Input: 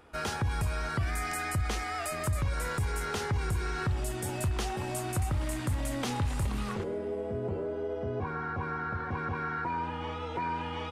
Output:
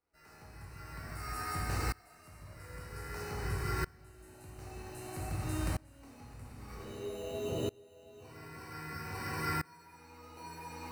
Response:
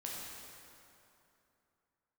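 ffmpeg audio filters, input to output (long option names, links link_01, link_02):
-filter_complex "[0:a]acrossover=split=210|5700[link_01][link_02][link_03];[link_02]acrusher=samples=13:mix=1:aa=0.000001[link_04];[link_01][link_04][link_03]amix=inputs=3:normalize=0[link_05];[1:a]atrim=start_sample=2205,asetrate=66150,aresample=44100[link_06];[link_05][link_06]afir=irnorm=-1:irlink=0,aeval=exprs='val(0)*pow(10,-27*if(lt(mod(-0.52*n/s,1),2*abs(-0.52)/1000),1-mod(-0.52*n/s,1)/(2*abs(-0.52)/1000),(mod(-0.52*n/s,1)-2*abs(-0.52)/1000)/(1-2*abs(-0.52)/1000))/20)':channel_layout=same,volume=3.5dB"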